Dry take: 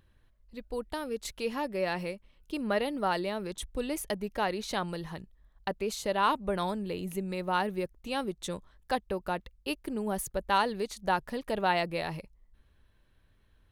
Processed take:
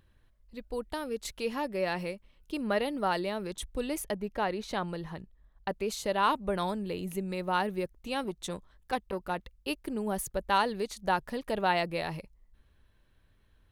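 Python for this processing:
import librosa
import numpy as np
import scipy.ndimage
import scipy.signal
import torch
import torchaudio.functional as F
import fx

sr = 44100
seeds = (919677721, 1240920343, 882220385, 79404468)

y = fx.high_shelf(x, sr, hz=3500.0, db=-8.0, at=(4.04, 5.69))
y = fx.transformer_sat(y, sr, knee_hz=880.0, at=(8.14, 9.37))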